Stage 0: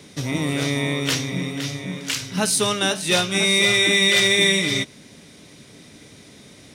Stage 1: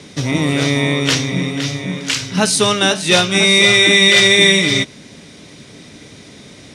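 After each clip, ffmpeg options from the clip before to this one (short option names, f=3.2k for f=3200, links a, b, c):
-af "lowpass=8.1k,volume=7dB"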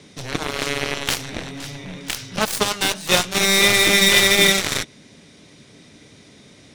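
-af "aeval=exprs='0.841*(cos(1*acos(clip(val(0)/0.841,-1,1)))-cos(1*PI/2))+0.188*(cos(3*acos(clip(val(0)/0.841,-1,1)))-cos(3*PI/2))+0.0266*(cos(6*acos(clip(val(0)/0.841,-1,1)))-cos(6*PI/2))+0.0944*(cos(7*acos(clip(val(0)/0.841,-1,1)))-cos(7*PI/2))':c=same,volume=-1.5dB"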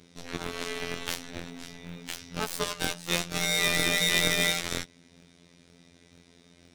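-filter_complex "[0:a]afftfilt=real='hypot(re,im)*cos(PI*b)':imag='0':win_size=2048:overlap=0.75,asplit=2[a][b];[b]acrusher=samples=41:mix=1:aa=0.000001,volume=-10.5dB[c];[a][c]amix=inputs=2:normalize=0,volume=-7.5dB"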